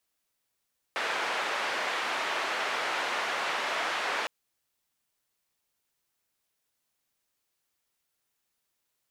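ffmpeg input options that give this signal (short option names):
-f lavfi -i "anoisesrc=c=white:d=3.31:r=44100:seed=1,highpass=f=540,lowpass=f=2000,volume=-14.9dB"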